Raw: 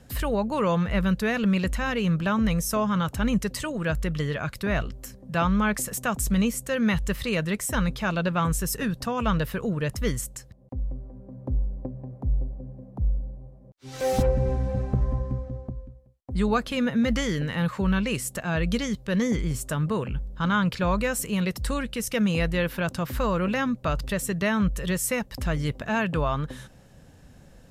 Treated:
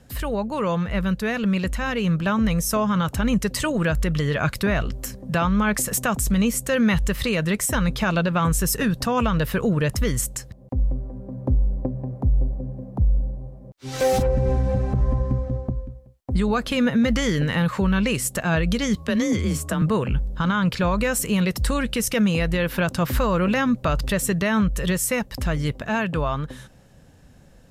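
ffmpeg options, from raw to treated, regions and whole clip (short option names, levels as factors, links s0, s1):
-filter_complex "[0:a]asettb=1/sr,asplit=3[s0][s1][s2];[s0]atrim=end=18.964[s3];[s1]atrim=start=18.96:end=19.82,asetpts=PTS-STARTPTS,afade=t=in:d=0.004:c=qsin,afade=t=out:st=0.856:d=0.004:c=qsin,acrossover=split=190|2300[s4][s5][s6];[s4]acompressor=threshold=0.0251:ratio=4[s7];[s5]acompressor=threshold=0.0282:ratio=4[s8];[s6]acompressor=threshold=0.0112:ratio=4[s9];[s7][s8][s9]amix=inputs=3:normalize=0,afreqshift=31,aeval=exprs='val(0)+0.00112*sin(2*PI*1100*n/s)':c=same[s10];[s2]atrim=start=19.816[s11];[s3][s10]acrossfade=d=0.004:c1=hsin:c2=qsin[s12];[s12][s11]acrossfade=d=0.004:c1=qsin:c2=hsin,dynaudnorm=f=360:g=17:m=2.99,alimiter=limit=0.237:level=0:latency=1:release=145"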